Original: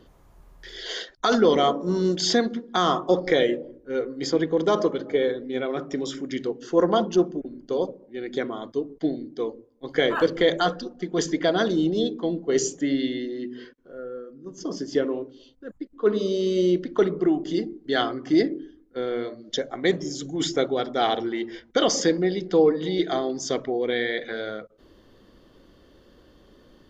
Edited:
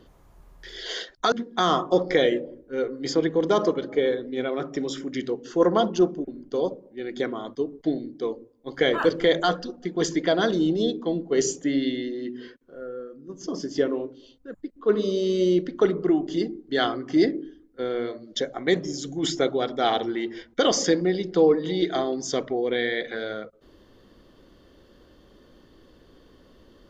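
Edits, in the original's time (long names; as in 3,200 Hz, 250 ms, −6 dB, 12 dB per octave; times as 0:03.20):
0:01.32–0:02.49: remove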